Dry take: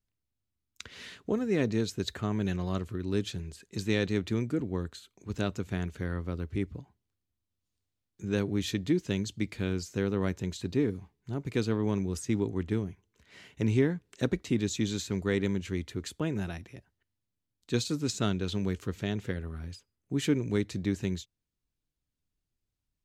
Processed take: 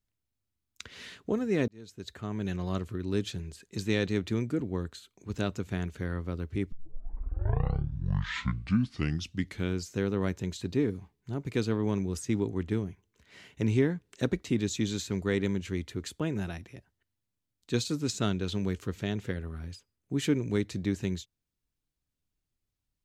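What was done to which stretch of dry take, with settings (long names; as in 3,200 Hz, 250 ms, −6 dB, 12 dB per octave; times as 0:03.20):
0:01.68–0:02.72: fade in
0:06.72: tape start 3.04 s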